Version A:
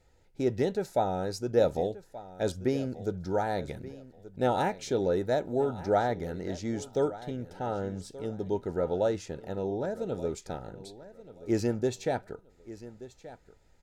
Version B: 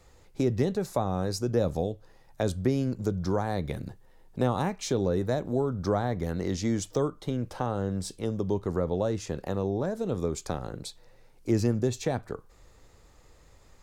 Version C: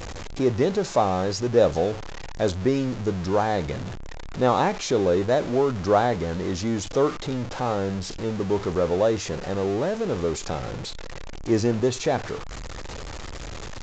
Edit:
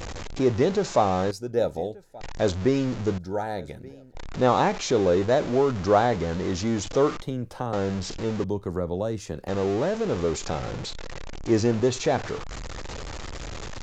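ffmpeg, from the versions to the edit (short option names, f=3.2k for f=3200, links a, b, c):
-filter_complex "[0:a]asplit=2[a][b];[1:a]asplit=2[c][d];[2:a]asplit=5[e][f][g][h][i];[e]atrim=end=1.312[j];[a]atrim=start=1.308:end=2.212[k];[f]atrim=start=2.208:end=3.182[l];[b]atrim=start=3.178:end=4.152[m];[g]atrim=start=4.148:end=7.222[n];[c]atrim=start=7.218:end=7.732[o];[h]atrim=start=7.728:end=8.442[p];[d]atrim=start=8.438:end=9.482[q];[i]atrim=start=9.478[r];[j][k]acrossfade=d=0.004:c1=hsin:c2=hsin[s];[s][l]acrossfade=d=0.004:c1=hsin:c2=hsin[t];[t][m]acrossfade=d=0.004:c1=hsin:c2=hsin[u];[u][n]acrossfade=d=0.004:c1=hsin:c2=hsin[v];[v][o]acrossfade=d=0.004:c1=hsin:c2=hsin[w];[w][p]acrossfade=d=0.004:c1=hsin:c2=hsin[x];[x][q]acrossfade=d=0.004:c1=hsin:c2=hsin[y];[y][r]acrossfade=d=0.004:c1=hsin:c2=hsin"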